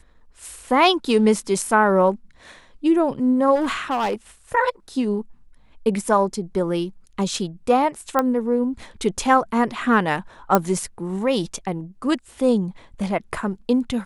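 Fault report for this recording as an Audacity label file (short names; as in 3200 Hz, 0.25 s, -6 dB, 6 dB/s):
3.550000	4.140000	clipped -18 dBFS
8.190000	8.190000	pop -7 dBFS
10.550000	10.550000	pop -3 dBFS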